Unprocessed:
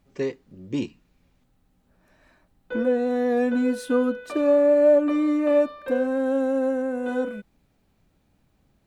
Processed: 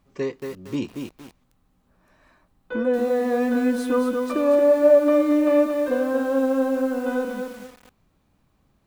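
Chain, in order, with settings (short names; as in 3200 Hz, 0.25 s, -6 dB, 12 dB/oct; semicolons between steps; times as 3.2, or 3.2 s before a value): bell 1100 Hz +7.5 dB 0.34 oct; lo-fi delay 0.23 s, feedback 35%, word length 7-bit, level -5 dB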